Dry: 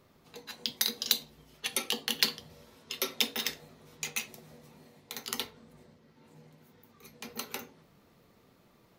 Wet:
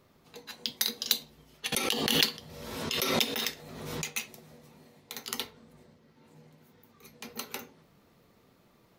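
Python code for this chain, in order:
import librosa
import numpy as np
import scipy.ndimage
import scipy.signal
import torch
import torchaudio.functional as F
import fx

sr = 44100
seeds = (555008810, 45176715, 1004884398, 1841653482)

y = fx.pre_swell(x, sr, db_per_s=37.0, at=(1.72, 4.1))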